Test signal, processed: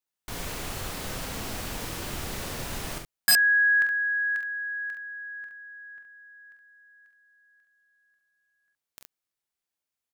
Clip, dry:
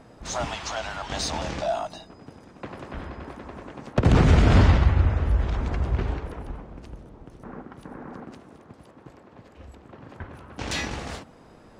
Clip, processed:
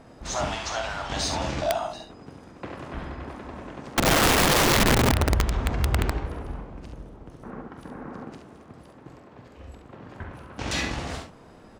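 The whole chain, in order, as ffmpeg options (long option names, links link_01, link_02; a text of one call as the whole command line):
ffmpeg -i in.wav -af "aecho=1:1:30|45|69:0.188|0.376|0.447,aeval=exprs='(mod(5.31*val(0)+1,2)-1)/5.31':channel_layout=same" out.wav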